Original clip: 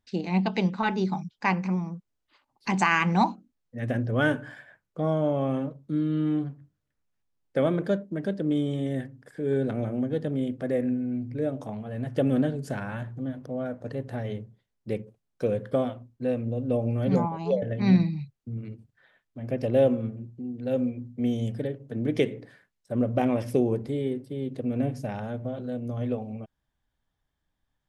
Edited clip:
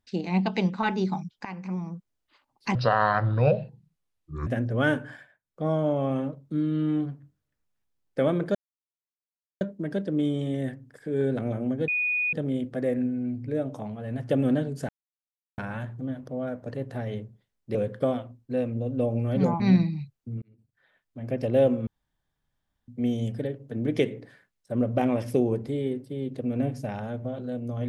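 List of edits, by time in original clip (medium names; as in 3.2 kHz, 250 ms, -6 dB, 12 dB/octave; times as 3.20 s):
1.45–1.96 s: fade in, from -19 dB
2.75–3.85 s: speed 64%
4.52–5.04 s: dip -19 dB, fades 0.24 s
7.93 s: insert silence 1.06 s
10.20 s: add tone 2.47 kHz -23 dBFS 0.45 s
12.76 s: insert silence 0.69 s
14.93–15.46 s: delete
17.31–17.80 s: delete
18.62–19.40 s: fade in
20.07–21.08 s: room tone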